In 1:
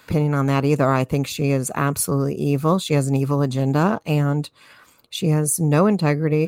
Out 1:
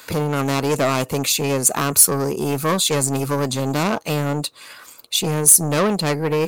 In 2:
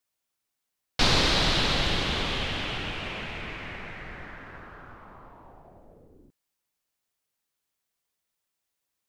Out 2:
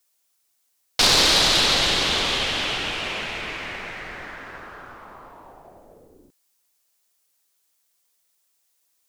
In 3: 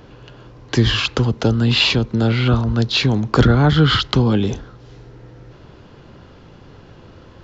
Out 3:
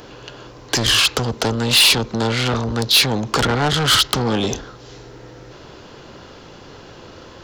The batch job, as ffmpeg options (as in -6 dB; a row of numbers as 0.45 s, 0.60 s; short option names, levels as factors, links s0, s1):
-af "aeval=exprs='(tanh(7.94*val(0)+0.1)-tanh(0.1))/7.94':c=same,bass=f=250:g=-9,treble=f=4000:g=8,volume=2.11"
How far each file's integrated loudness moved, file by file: +2.0 LU, +7.0 LU, +0.5 LU